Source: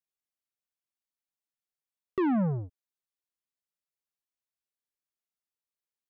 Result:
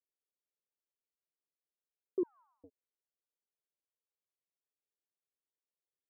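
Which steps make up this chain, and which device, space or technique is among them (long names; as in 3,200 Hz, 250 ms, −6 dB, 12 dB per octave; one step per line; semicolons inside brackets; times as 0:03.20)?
high-pass filter 470 Hz 12 dB per octave
overdriven synthesiser ladder filter (soft clipping −32 dBFS, distortion −11 dB; transistor ladder low-pass 540 Hz, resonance 40%)
0:02.23–0:02.64: Butterworth high-pass 1,000 Hz 72 dB per octave
level +9.5 dB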